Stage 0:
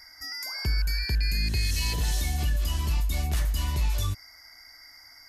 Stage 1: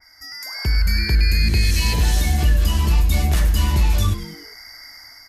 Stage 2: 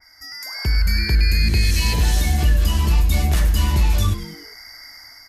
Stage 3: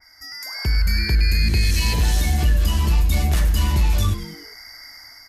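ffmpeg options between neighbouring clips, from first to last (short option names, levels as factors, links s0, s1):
-filter_complex "[0:a]asplit=2[s0][s1];[s1]asplit=4[s2][s3][s4][s5];[s2]adelay=99,afreqshift=-130,volume=0.237[s6];[s3]adelay=198,afreqshift=-260,volume=0.102[s7];[s4]adelay=297,afreqshift=-390,volume=0.0437[s8];[s5]adelay=396,afreqshift=-520,volume=0.0188[s9];[s6][s7][s8][s9]amix=inputs=4:normalize=0[s10];[s0][s10]amix=inputs=2:normalize=0,dynaudnorm=f=140:g=9:m=2.99,adynamicequalizer=threshold=0.0178:dfrequency=2800:dqfactor=0.7:tfrequency=2800:tqfactor=0.7:attack=5:release=100:ratio=0.375:range=2:mode=cutabove:tftype=highshelf"
-af anull
-af "acontrast=27,volume=0.531"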